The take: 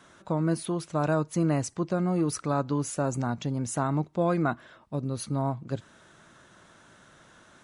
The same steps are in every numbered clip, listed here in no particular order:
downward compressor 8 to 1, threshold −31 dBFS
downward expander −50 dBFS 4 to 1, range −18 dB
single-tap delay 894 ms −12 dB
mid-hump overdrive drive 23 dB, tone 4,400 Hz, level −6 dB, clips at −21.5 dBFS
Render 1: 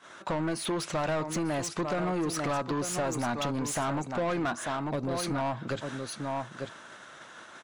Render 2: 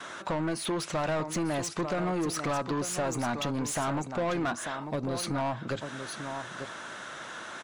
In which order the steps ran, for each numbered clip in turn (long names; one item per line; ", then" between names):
downward expander, then single-tap delay, then downward compressor, then mid-hump overdrive
downward compressor, then single-tap delay, then mid-hump overdrive, then downward expander